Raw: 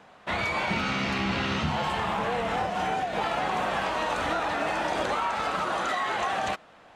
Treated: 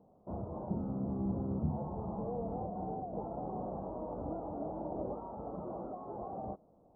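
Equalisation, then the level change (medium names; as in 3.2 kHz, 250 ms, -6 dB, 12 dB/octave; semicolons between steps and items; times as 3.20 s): Gaussian low-pass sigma 14 samples; -3.5 dB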